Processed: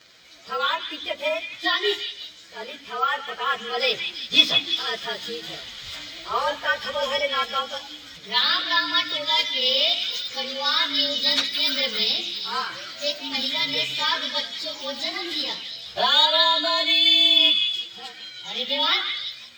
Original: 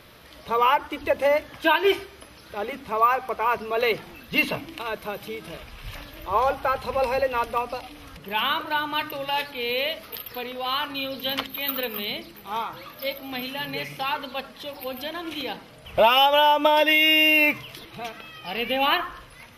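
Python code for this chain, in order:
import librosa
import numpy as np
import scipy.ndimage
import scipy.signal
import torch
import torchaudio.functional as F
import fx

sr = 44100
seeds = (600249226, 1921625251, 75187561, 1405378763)

p1 = fx.partial_stretch(x, sr, pct=109)
p2 = fx.notch(p1, sr, hz=2700.0, q=7.1)
p3 = fx.rider(p2, sr, range_db=5, speed_s=2.0)
p4 = fx.weighting(p3, sr, curve='D')
p5 = p4 + fx.echo_stepped(p4, sr, ms=170, hz=2700.0, octaves=0.7, feedback_pct=70, wet_db=-5, dry=0)
y = F.gain(torch.from_numpy(p5), -2.5).numpy()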